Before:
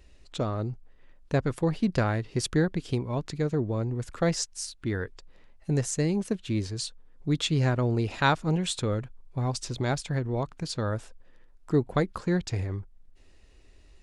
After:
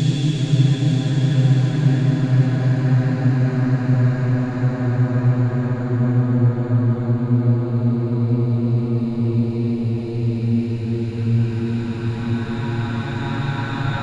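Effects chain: resonant low shelf 320 Hz +7.5 dB, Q 1.5; Paulstretch 22×, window 0.50 s, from 7.53

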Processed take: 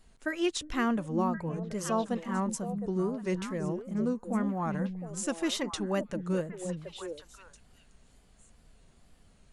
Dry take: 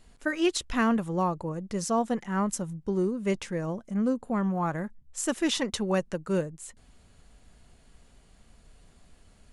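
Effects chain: delay with a stepping band-pass 0.359 s, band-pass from 180 Hz, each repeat 1.4 oct, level -3 dB; wow and flutter 87 cents; gain -4 dB

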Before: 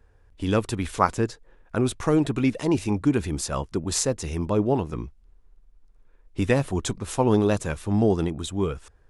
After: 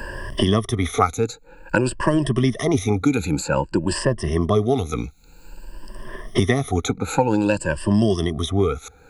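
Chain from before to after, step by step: moving spectral ripple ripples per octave 1.3, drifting +0.52 Hz, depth 21 dB; three-band squash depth 100%; gain -1 dB

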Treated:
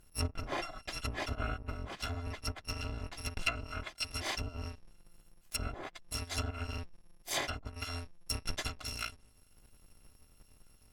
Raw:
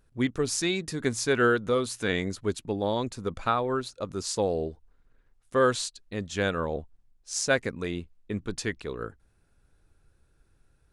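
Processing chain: FFT order left unsorted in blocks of 256 samples; treble ducked by the level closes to 690 Hz, closed at -22 dBFS; gain +4 dB

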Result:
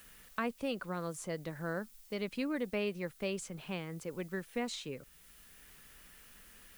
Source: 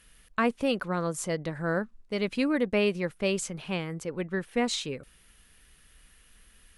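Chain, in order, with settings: added noise blue -56 dBFS; three-band squash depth 40%; gain -9 dB

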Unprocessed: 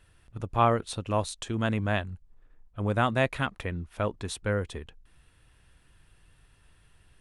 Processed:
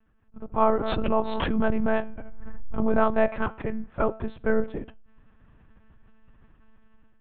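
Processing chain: LPF 1300 Hz 12 dB/oct; AGC gain up to 10.5 dB; flange 0.65 Hz, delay 9.7 ms, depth 4.3 ms, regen +86%; monotone LPC vocoder at 8 kHz 220 Hz; 0.73–3.09 backwards sustainer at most 21 dB/s

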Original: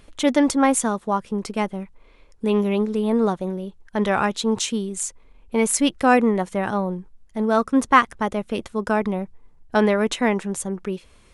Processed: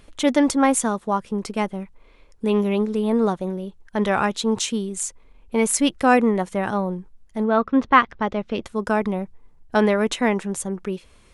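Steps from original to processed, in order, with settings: 7.43–8.63 LPF 3300 Hz -> 5800 Hz 24 dB/oct

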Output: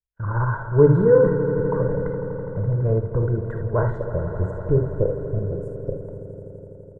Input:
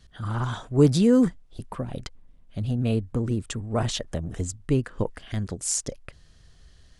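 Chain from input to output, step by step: elliptic low-pass 1700 Hz, stop band 40 dB, from 3.94 s 750 Hz; gate -44 dBFS, range -46 dB; comb 2 ms, depth 95%; swelling echo 83 ms, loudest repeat 5, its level -14.5 dB; non-linear reverb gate 90 ms rising, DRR 5 dB; gain +2 dB

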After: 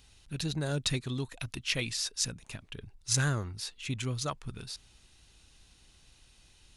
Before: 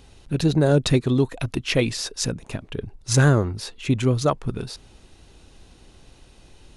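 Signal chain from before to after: passive tone stack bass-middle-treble 5-5-5; gain +2.5 dB

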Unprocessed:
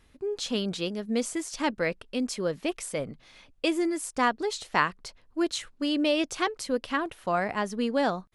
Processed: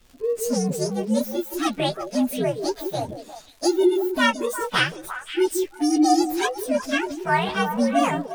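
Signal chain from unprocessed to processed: inharmonic rescaling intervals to 126%; delay with a stepping band-pass 0.176 s, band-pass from 400 Hz, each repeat 1.4 oct, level -4 dB; crackle 220/s -48 dBFS; gain +8 dB

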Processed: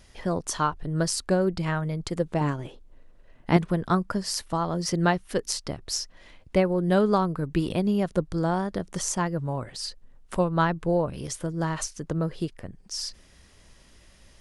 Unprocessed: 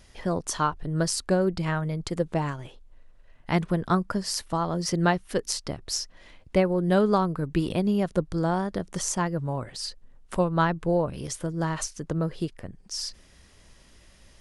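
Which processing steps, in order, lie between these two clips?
2.41–3.57 bell 300 Hz +8 dB 2.1 oct

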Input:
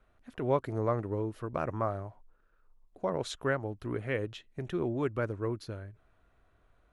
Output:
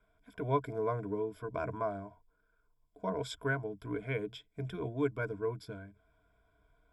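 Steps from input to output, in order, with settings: ripple EQ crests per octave 1.7, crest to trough 17 dB; gain -6 dB

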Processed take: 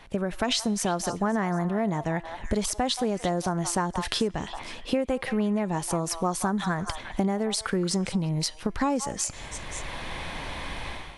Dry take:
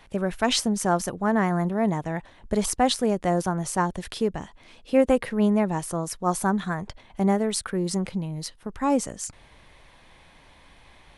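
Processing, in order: in parallel at +2 dB: limiter -15 dBFS, peak gain reduction 7 dB; on the sum: resonator 340 Hz, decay 0.72 s, mix 40%; AGC gain up to 15.5 dB; on a send: delay with a stepping band-pass 0.175 s, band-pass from 1000 Hz, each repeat 1.4 oct, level -9.5 dB; on the sum: dynamic EQ 4500 Hz, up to +4 dB, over -35 dBFS, Q 0.72; compressor 6:1, threshold -24 dBFS, peak gain reduction 16.5 dB; high shelf 9400 Hz -5.5 dB

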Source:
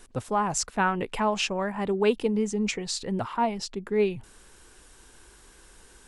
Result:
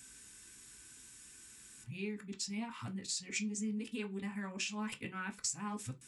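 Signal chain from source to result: whole clip reversed; HPF 55 Hz; passive tone stack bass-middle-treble 6-0-2; compressor, threshold -51 dBFS, peak gain reduction 12 dB; reverb RT60 0.20 s, pre-delay 3 ms, DRR 3 dB; gain +13.5 dB

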